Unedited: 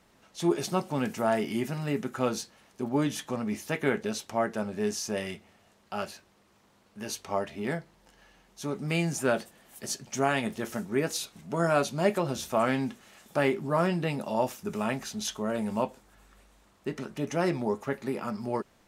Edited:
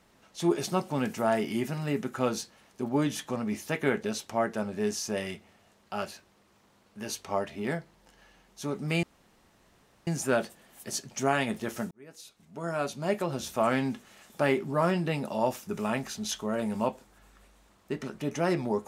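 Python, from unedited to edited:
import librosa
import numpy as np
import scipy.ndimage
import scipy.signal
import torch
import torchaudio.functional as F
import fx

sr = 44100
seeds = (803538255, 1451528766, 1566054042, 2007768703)

y = fx.edit(x, sr, fx.insert_room_tone(at_s=9.03, length_s=1.04),
    fx.fade_in_span(start_s=10.87, length_s=1.78), tone=tone)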